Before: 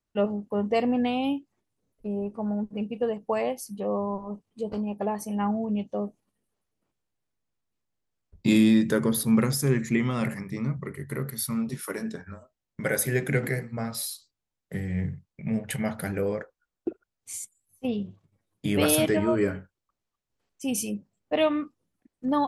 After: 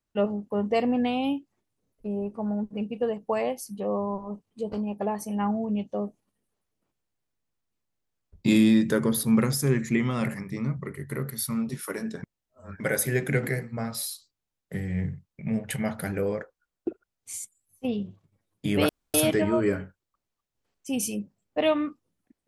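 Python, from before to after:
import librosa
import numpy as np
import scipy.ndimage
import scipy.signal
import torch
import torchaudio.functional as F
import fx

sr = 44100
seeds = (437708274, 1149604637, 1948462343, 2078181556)

y = fx.edit(x, sr, fx.reverse_span(start_s=12.23, length_s=0.57),
    fx.insert_room_tone(at_s=18.89, length_s=0.25), tone=tone)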